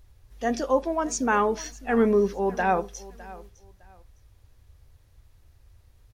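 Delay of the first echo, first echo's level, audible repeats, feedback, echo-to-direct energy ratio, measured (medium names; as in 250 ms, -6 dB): 608 ms, -19.5 dB, 2, 23%, -19.5 dB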